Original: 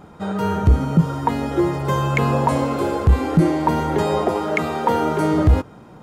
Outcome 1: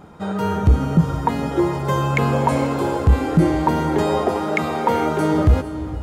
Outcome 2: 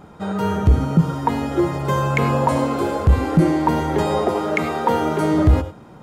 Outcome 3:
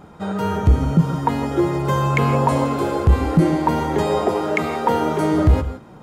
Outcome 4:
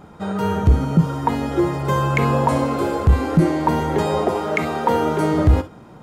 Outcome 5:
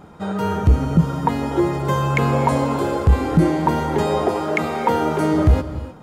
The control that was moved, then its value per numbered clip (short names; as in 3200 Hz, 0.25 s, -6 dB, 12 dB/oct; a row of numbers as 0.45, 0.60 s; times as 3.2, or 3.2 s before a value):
non-linear reverb, gate: 500, 120, 190, 80, 330 ms